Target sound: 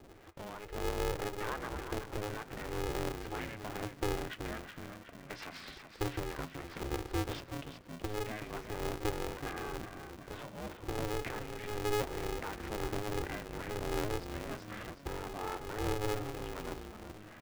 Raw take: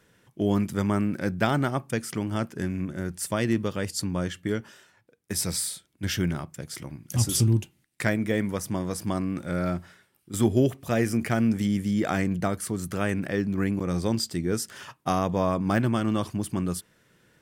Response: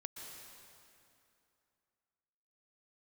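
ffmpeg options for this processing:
-filter_complex "[0:a]lowpass=frequency=2700:width=0.5412,lowpass=frequency=2700:width=1.3066,acompressor=threshold=-45dB:ratio=2,alimiter=level_in=10.5dB:limit=-24dB:level=0:latency=1:release=61,volume=-10.5dB,acrossover=split=480[link_01][link_02];[link_01]aeval=exprs='val(0)*(1-1/2+1/2*cos(2*PI*1*n/s))':channel_layout=same[link_03];[link_02]aeval=exprs='val(0)*(1-1/2-1/2*cos(2*PI*1*n/s))':channel_layout=same[link_04];[link_03][link_04]amix=inputs=2:normalize=0,asettb=1/sr,asplit=3[link_05][link_06][link_07];[link_05]atrim=end=0.664[link_08];[link_06]atrim=start=0.66:end=1.25,asetpts=PTS-STARTPTS,afade=type=in:duration=0.004:curve=qsin,afade=type=out:start_time=0.586:duration=0.004:curve=qsin,afreqshift=36[link_09];[link_07]atrim=start=1.246[link_10];[link_08][link_09]acrossfade=duration=0.004:curve1=hsin:curve2=qsin[link_11];[link_11][link_10]acrossfade=duration=0.004:curve1=qsin:curve2=hsin,asplit=7[link_12][link_13][link_14][link_15][link_16][link_17][link_18];[link_13]adelay=373,afreqshift=-38,volume=-8dB[link_19];[link_14]adelay=746,afreqshift=-76,volume=-13.8dB[link_20];[link_15]adelay=1119,afreqshift=-114,volume=-19.7dB[link_21];[link_16]adelay=1492,afreqshift=-152,volume=-25.5dB[link_22];[link_17]adelay=1865,afreqshift=-190,volume=-31.4dB[link_23];[link_18]adelay=2238,afreqshift=-228,volume=-37.2dB[link_24];[link_12][link_19][link_20][link_21][link_22][link_23][link_24]amix=inputs=7:normalize=0,aeval=exprs='val(0)*sgn(sin(2*PI*210*n/s))':channel_layout=same,volume=11dB"

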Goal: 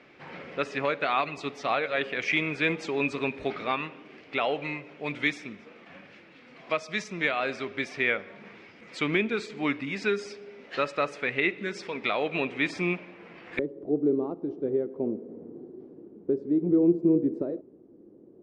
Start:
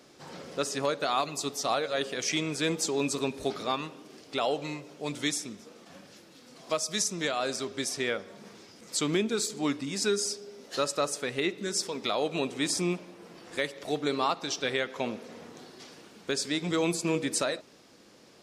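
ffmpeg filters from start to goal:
ffmpeg -i in.wav -af "asetnsamples=nb_out_samples=441:pad=0,asendcmd='13.59 lowpass f 360',lowpass=frequency=2300:width_type=q:width=3.2" out.wav

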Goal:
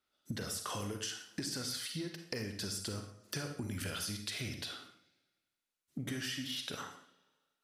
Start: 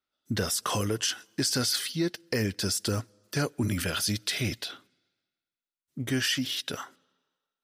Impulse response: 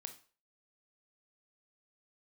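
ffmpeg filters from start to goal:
-filter_complex "[0:a]acompressor=threshold=-41dB:ratio=10[link_01];[1:a]atrim=start_sample=2205,afade=type=out:start_time=0.19:duration=0.01,atrim=end_sample=8820,asetrate=25578,aresample=44100[link_02];[link_01][link_02]afir=irnorm=-1:irlink=0,volume=6dB"

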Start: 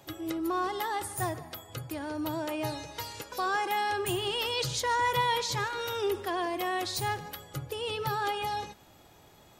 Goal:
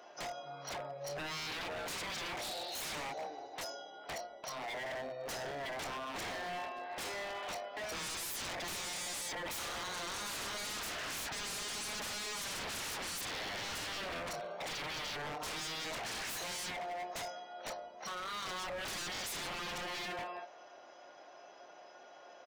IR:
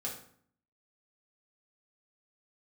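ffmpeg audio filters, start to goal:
-filter_complex "[0:a]equalizer=frequency=11000:width_type=o:width=2.8:gain=-3,asetrate=18846,aresample=44100,highpass=frequency=660:width_type=q:width=4.9,asplit=2[link_01][link_02];[link_02]adelay=27,volume=-9dB[link_03];[link_01][link_03]amix=inputs=2:normalize=0,aeval=exprs='0.0126*(abs(mod(val(0)/0.0126+3,4)-2)-1)':channel_layout=same,volume=2dB"

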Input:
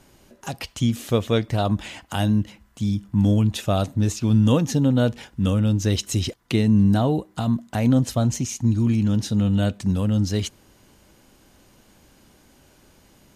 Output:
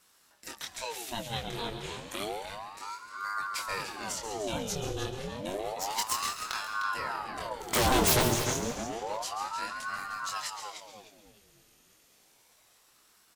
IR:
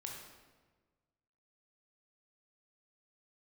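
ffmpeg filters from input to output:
-filter_complex "[0:a]tiltshelf=frequency=1200:gain=-7.5,asettb=1/sr,asplit=3[link_01][link_02][link_03];[link_01]atrim=end=5.504[link_04];[link_02]atrim=start=5.5:end=6.52,asetpts=PTS-STARTPTS,afade=type=in:duration=0.004:curve=qsin,afade=type=out:start_time=1.016:duration=0.004:curve=qsin,aeval=exprs='0.501*(cos(1*acos(clip(val(0)/0.501,-1,1)))-cos(1*PI/2))+0.1*(cos(6*acos(clip(val(0)/0.501,-1,1)))-cos(6*PI/2))':channel_layout=same[link_05];[link_03]atrim=start=6.516[link_06];[link_04][link_05]acrossfade=duration=0.004:curve1=hsin:curve2=qsin[link_07];[link_07][link_06]acrossfade=duration=0.004:curve1=qsin:curve2=hsin,asettb=1/sr,asplit=3[link_08][link_09][link_10];[link_08]atrim=end=7.604[link_11];[link_09]atrim=start=7.6:end=8.21,asetpts=PTS-STARTPTS,afade=type=in:duration=0.004:curve=qsin,afade=type=out:start_time=0.606:duration=0.004:curve=qsin,aeval=exprs='0.316*sin(PI/2*7.08*val(0)/0.316)':channel_layout=same[link_12];[link_10]atrim=start=8.206[link_13];[link_11][link_12]acrossfade=duration=0.004:curve1=hsin:curve2=qsin[link_14];[link_14][link_13]acrossfade=duration=0.004:curve1=qsin:curve2=hsin,highshelf=frequency=9700:gain=4,asplit=2[link_15][link_16];[1:a]atrim=start_sample=2205,adelay=136[link_17];[link_16][link_17]afir=irnorm=-1:irlink=0,volume=-5dB[link_18];[link_15][link_18]amix=inputs=2:normalize=0,flanger=delay=20:depth=5.7:speed=0.88,asplit=2[link_19][link_20];[link_20]adelay=304,lowpass=frequency=3700:poles=1,volume=-5dB,asplit=2[link_21][link_22];[link_22]adelay=304,lowpass=frequency=3700:poles=1,volume=0.38,asplit=2[link_23][link_24];[link_24]adelay=304,lowpass=frequency=3700:poles=1,volume=0.38,asplit=2[link_25][link_26];[link_26]adelay=304,lowpass=frequency=3700:poles=1,volume=0.38,asplit=2[link_27][link_28];[link_28]adelay=304,lowpass=frequency=3700:poles=1,volume=0.38[link_29];[link_19][link_21][link_23][link_25][link_27][link_29]amix=inputs=6:normalize=0,aeval=exprs='val(0)*sin(2*PI*770*n/s+770*0.7/0.3*sin(2*PI*0.3*n/s))':channel_layout=same,volume=-6dB"

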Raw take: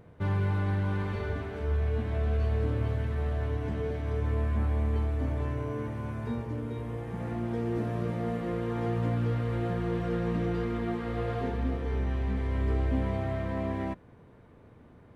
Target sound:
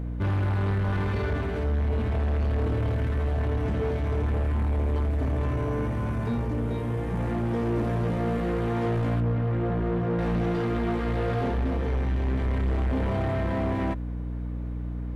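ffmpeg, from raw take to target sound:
ffmpeg -i in.wav -filter_complex "[0:a]aeval=exprs='val(0)+0.0126*(sin(2*PI*60*n/s)+sin(2*PI*2*60*n/s)/2+sin(2*PI*3*60*n/s)/3+sin(2*PI*4*60*n/s)/4+sin(2*PI*5*60*n/s)/5)':channel_layout=same,asoftclip=type=tanh:threshold=-30.5dB,asettb=1/sr,asplit=3[link_01][link_02][link_03];[link_01]atrim=end=9.204[link_04];[link_02]atrim=start=9.2:end=10.19,asetpts=PTS-STARTPTS,afade=type=in:duration=0.004:curve=qsin,afade=type=out:start_time=0.986:duration=0.004:curve=qsin,lowpass=frequency=1300:poles=1[link_05];[link_03]atrim=start=10.186[link_06];[link_04][link_05]acrossfade=duration=0.004:curve1=hsin:curve2=qsin[link_07];[link_07][link_06]acrossfade=duration=0.004:curve1=qsin:curve2=hsin,volume=8.5dB" out.wav

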